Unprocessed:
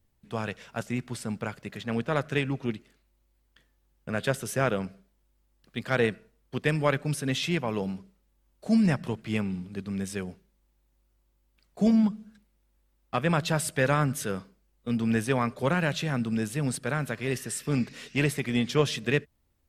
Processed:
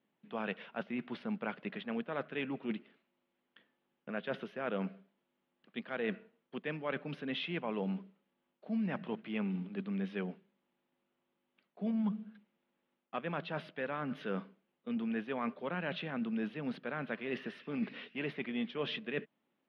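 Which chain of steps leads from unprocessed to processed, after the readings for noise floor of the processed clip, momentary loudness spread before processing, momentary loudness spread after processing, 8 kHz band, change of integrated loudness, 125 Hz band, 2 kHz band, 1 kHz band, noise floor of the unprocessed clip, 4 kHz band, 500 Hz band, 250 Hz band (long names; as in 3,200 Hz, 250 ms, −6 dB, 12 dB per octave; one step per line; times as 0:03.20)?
−84 dBFS, 12 LU, 7 LU, below −35 dB, −10.5 dB, −15.5 dB, −9.5 dB, −10.0 dB, −70 dBFS, −9.5 dB, −10.0 dB, −9.0 dB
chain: reversed playback
downward compressor 10 to 1, threshold −31 dBFS, peak gain reduction 14.5 dB
reversed playback
elliptic band-pass filter 190–3,200 Hz, stop band 40 dB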